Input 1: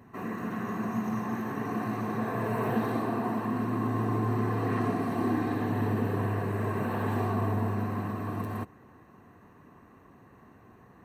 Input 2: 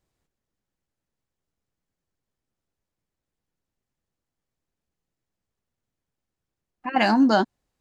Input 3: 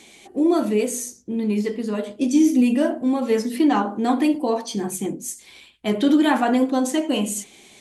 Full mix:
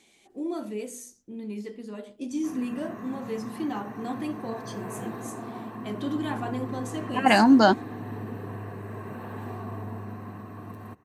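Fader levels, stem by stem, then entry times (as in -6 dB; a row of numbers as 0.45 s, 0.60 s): -7.5 dB, +1.5 dB, -13.5 dB; 2.30 s, 0.30 s, 0.00 s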